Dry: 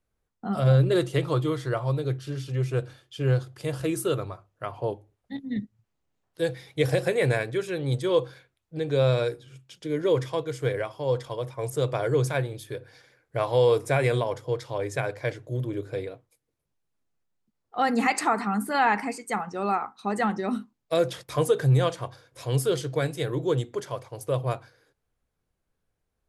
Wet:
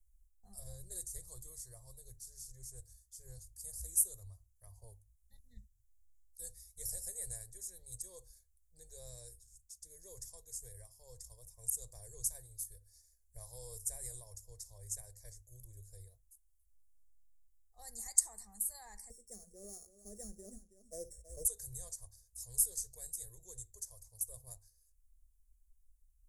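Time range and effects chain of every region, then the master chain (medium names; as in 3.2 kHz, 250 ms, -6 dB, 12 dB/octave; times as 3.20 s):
19.10–21.45 s: sorted samples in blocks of 8 samples + FFT filter 120 Hz 0 dB, 230 Hz +13 dB, 350 Hz +15 dB, 630 Hz +10 dB, 890 Hz -21 dB, 1.4 kHz -2 dB, 3.5 kHz -18 dB, 5.3 kHz -24 dB, 8.3 kHz -3 dB, 12 kHz -30 dB + delay 325 ms -13.5 dB
whole clip: inverse Chebyshev band-stop 130–3000 Hz, stop band 50 dB; resonant high shelf 2.2 kHz -8.5 dB, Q 3; trim +15.5 dB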